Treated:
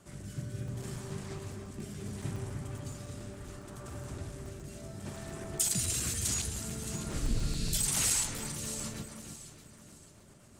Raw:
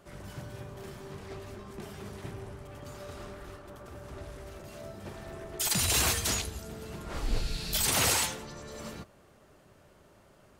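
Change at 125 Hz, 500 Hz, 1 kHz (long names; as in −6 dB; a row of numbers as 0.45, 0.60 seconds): +2.0, −4.5, −9.0 decibels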